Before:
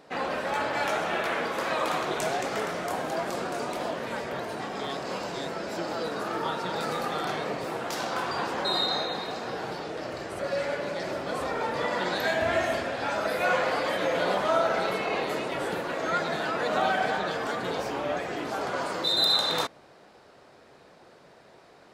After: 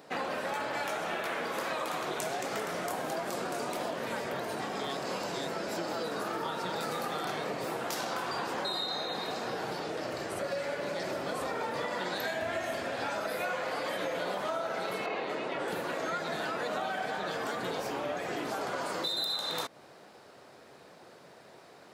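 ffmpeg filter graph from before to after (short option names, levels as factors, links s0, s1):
-filter_complex "[0:a]asettb=1/sr,asplit=3[s0][s1][s2];[s0]atrim=end=15.064[s3];[s1]atrim=start=15.06:end=15.68,asetpts=PTS-STARTPTS,afade=t=in:d=0.004:c=qsin,afade=t=out:st=0.616:d=0.004:c=qsin,highpass=130,lowpass=7100,bass=f=250:g=-2,treble=f=4000:g=-7[s4];[s2]atrim=start=15.676[s5];[s3][s4]acrossfade=d=0.004:c1=hsin:c2=qsin[s6];[s6][s5]acrossfade=d=0.004:c1=qsin:c2=hsin,highpass=89,highshelf=f=9500:g=10,acompressor=threshold=0.0282:ratio=6"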